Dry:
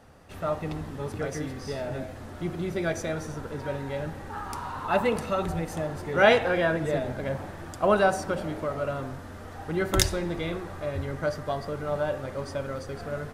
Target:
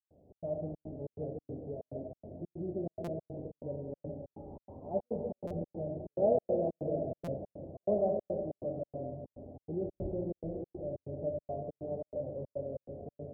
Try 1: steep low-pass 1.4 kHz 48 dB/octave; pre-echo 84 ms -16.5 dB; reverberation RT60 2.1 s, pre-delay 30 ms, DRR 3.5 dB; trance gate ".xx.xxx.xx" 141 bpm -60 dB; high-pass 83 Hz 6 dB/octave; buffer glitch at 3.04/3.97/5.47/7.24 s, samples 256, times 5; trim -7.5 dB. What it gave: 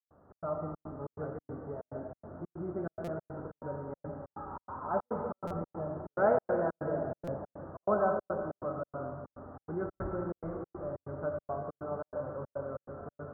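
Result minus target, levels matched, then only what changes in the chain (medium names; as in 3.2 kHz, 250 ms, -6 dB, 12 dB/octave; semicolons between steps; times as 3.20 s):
1 kHz band +7.5 dB
change: steep low-pass 690 Hz 48 dB/octave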